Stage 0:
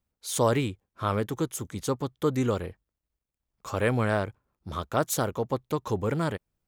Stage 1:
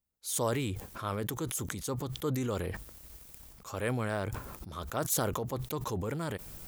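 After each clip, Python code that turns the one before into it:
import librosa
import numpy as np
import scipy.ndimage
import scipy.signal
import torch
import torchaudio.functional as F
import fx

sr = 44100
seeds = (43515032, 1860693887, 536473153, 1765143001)

y = fx.high_shelf(x, sr, hz=6600.0, db=11.0)
y = fx.sustainer(y, sr, db_per_s=21.0)
y = y * librosa.db_to_amplitude(-8.5)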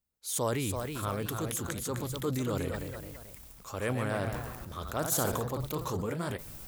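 y = fx.echo_pitch(x, sr, ms=354, semitones=1, count=3, db_per_echo=-6.0)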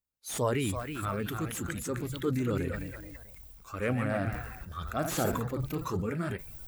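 y = fx.spec_quant(x, sr, step_db=15)
y = fx.noise_reduce_blind(y, sr, reduce_db=9)
y = fx.slew_limit(y, sr, full_power_hz=97.0)
y = y * librosa.db_to_amplitude(3.0)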